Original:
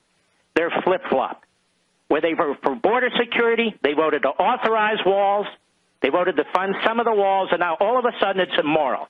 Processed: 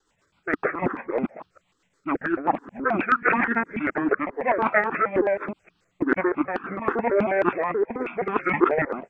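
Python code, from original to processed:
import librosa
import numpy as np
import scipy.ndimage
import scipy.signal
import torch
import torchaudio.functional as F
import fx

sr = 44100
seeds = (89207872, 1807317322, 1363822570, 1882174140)

y = fx.local_reverse(x, sr, ms=158.0)
y = fx.rotary_switch(y, sr, hz=7.5, then_hz=0.85, switch_at_s=5.29)
y = fx.formant_shift(y, sr, semitones=-5)
y = fx.dynamic_eq(y, sr, hz=1600.0, q=1.5, threshold_db=-39.0, ratio=4.0, max_db=6)
y = fx.phaser_held(y, sr, hz=9.3, low_hz=630.0, high_hz=2100.0)
y = y * librosa.db_to_amplitude(2.0)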